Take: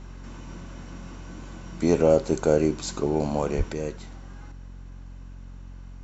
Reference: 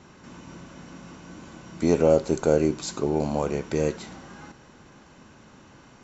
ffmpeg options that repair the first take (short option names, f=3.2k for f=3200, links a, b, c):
-filter_complex "[0:a]bandreject=f=45.1:t=h:w=4,bandreject=f=90.2:t=h:w=4,bandreject=f=135.3:t=h:w=4,bandreject=f=180.4:t=h:w=4,bandreject=f=225.5:t=h:w=4,bandreject=f=270.6:t=h:w=4,asplit=3[a][b][c];[a]afade=t=out:st=3.57:d=0.02[d];[b]highpass=f=140:w=0.5412,highpass=f=140:w=1.3066,afade=t=in:st=3.57:d=0.02,afade=t=out:st=3.69:d=0.02[e];[c]afade=t=in:st=3.69:d=0.02[f];[d][e][f]amix=inputs=3:normalize=0,asetnsamples=n=441:p=0,asendcmd='3.73 volume volume 6.5dB',volume=0dB"